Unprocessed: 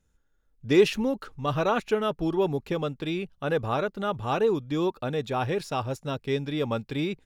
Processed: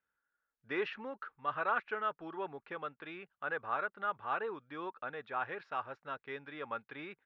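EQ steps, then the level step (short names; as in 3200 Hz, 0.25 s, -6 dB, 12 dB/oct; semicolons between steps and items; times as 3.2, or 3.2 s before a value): band-pass 1500 Hz, Q 2.2; air absorption 250 m; +1.0 dB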